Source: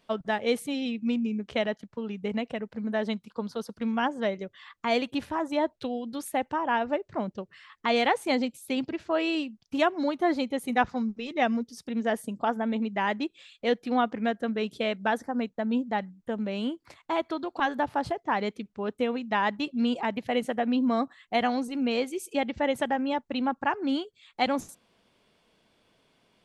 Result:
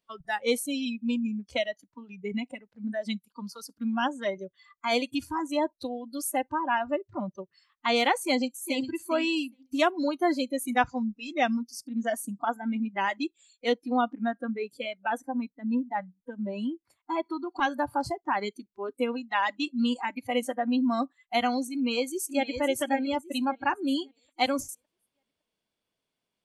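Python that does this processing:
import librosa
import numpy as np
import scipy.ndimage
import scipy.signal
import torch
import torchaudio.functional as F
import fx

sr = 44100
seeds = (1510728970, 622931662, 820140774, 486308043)

y = fx.echo_throw(x, sr, start_s=8.2, length_s=0.65, ms=410, feedback_pct=20, wet_db=-8.5)
y = fx.high_shelf(y, sr, hz=2800.0, db=-7.5, at=(13.73, 17.52))
y = fx.echo_throw(y, sr, start_s=21.73, length_s=0.88, ms=560, feedback_pct=45, wet_db=-7.5)
y = fx.noise_reduce_blind(y, sr, reduce_db=20)
y = fx.high_shelf(y, sr, hz=5500.0, db=10.5)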